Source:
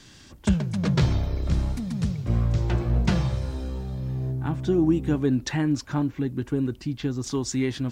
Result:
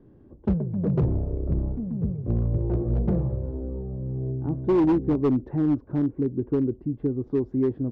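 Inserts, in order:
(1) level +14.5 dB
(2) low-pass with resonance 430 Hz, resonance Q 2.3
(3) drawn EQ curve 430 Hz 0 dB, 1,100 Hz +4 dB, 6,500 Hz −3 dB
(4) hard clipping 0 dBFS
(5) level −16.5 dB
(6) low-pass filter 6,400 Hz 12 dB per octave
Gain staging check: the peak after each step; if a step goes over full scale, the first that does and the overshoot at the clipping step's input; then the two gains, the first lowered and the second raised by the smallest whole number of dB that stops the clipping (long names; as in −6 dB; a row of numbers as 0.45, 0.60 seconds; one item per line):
+5.0, +7.5, +7.5, 0.0, −16.5, −16.5 dBFS
step 1, 7.5 dB
step 1 +6.5 dB, step 5 −8.5 dB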